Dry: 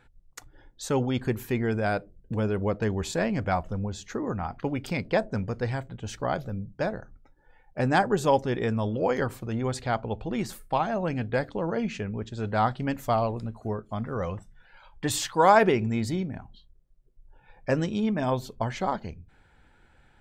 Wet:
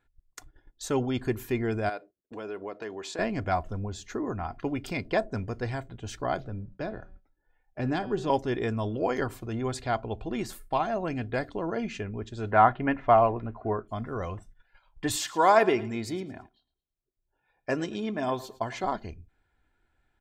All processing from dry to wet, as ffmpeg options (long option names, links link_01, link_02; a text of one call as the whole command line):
ffmpeg -i in.wav -filter_complex "[0:a]asettb=1/sr,asplit=3[link_01][link_02][link_03];[link_01]atrim=end=1.894[link_04];[link_02]atrim=start=1.89:end=3.19,asetpts=PTS-STARTPTS,afade=type=in:duration=0.004:curve=qsin,afade=type=out:start_time=1.296:duration=0.004:curve=qsin,agate=range=-33dB:threshold=-49dB:ratio=3:release=100:detection=peak,highpass=360,lowpass=6800,acompressor=threshold=-34dB:ratio=2:attack=3.2:release=140:knee=1:detection=peak[link_05];[link_03]atrim=start=3.186[link_06];[link_04][link_05]acrossfade=duration=0.004:curve1=hsin:curve2=qsin[link_07];[link_07][link_06]acrossfade=duration=0.004:curve1=qsin:curve2=hsin,asettb=1/sr,asplit=3[link_08][link_09][link_10];[link_08]atrim=end=6.404[link_11];[link_09]atrim=start=6.4:end=8.3,asetpts=PTS-STARTPTS,afade=type=in:duration=0.004:curve=qsin,afade=type=out:start_time=1.896:duration=0.004:curve=qsin,lowpass=3900,bandreject=frequency=189:width_type=h:width=4,bandreject=frequency=378:width_type=h:width=4,bandreject=frequency=567:width_type=h:width=4,bandreject=frequency=756:width_type=h:width=4,bandreject=frequency=945:width_type=h:width=4,bandreject=frequency=1134:width_type=h:width=4,bandreject=frequency=1323:width_type=h:width=4,bandreject=frequency=1512:width_type=h:width=4,bandreject=frequency=1701:width_type=h:width=4,bandreject=frequency=1890:width_type=h:width=4,bandreject=frequency=2079:width_type=h:width=4,bandreject=frequency=2268:width_type=h:width=4,bandreject=frequency=2457:width_type=h:width=4,bandreject=frequency=2646:width_type=h:width=4,bandreject=frequency=2835:width_type=h:width=4,bandreject=frequency=3024:width_type=h:width=4,bandreject=frequency=3213:width_type=h:width=4,bandreject=frequency=3402:width_type=h:width=4,bandreject=frequency=3591:width_type=h:width=4,bandreject=frequency=3780:width_type=h:width=4,bandreject=frequency=3969:width_type=h:width=4,bandreject=frequency=4158:width_type=h:width=4,bandreject=frequency=4347:width_type=h:width=4,bandreject=frequency=4536:width_type=h:width=4,bandreject=frequency=4725:width_type=h:width=4,bandreject=frequency=4914:width_type=h:width=4,bandreject=frequency=5103:width_type=h:width=4,acrossover=split=380|3000[link_12][link_13][link_14];[link_13]acompressor=threshold=-37dB:ratio=2:attack=3.2:release=140:knee=2.83:detection=peak[link_15];[link_12][link_15][link_14]amix=inputs=3:normalize=0[link_16];[link_10]atrim=start=8.296[link_17];[link_11][link_16]acrossfade=duration=0.004:curve1=hsin:curve2=qsin[link_18];[link_18][link_17]acrossfade=duration=0.004:curve1=qsin:curve2=hsin,asettb=1/sr,asplit=3[link_19][link_20][link_21];[link_19]atrim=end=12.514[link_22];[link_20]atrim=start=12.51:end=13.88,asetpts=PTS-STARTPTS,afade=type=in:duration=0.004:curve=qsin,afade=type=out:start_time=1.366:duration=0.004:curve=qsin,lowpass=frequency=2600:width=0.5412,lowpass=frequency=2600:width=1.3066,equalizer=frequency=1300:width=0.32:gain=7.5[link_23];[link_21]atrim=start=13.876[link_24];[link_22][link_23]acrossfade=duration=0.004:curve1=hsin:curve2=qsin[link_25];[link_25][link_24]acrossfade=duration=0.004:curve1=qsin:curve2=hsin,asettb=1/sr,asplit=3[link_26][link_27][link_28];[link_26]atrim=end=15.164[link_29];[link_27]atrim=start=15.16:end=18.84,asetpts=PTS-STARTPTS,afade=type=in:duration=0.004:curve=qsin,afade=type=out:start_time=3.676:duration=0.004:curve=qsin,highpass=frequency=210:poles=1,aecho=1:1:111|222|333:0.126|0.0403|0.0129,atrim=end_sample=162288[link_30];[link_28]atrim=start=18.836[link_31];[link_29][link_30]acrossfade=duration=0.004:curve1=hsin:curve2=qsin[link_32];[link_32][link_31]acrossfade=duration=0.004:curve1=qsin:curve2=hsin,aecho=1:1:2.9:0.4,agate=range=-12dB:threshold=-47dB:ratio=16:detection=peak,volume=-2dB" out.wav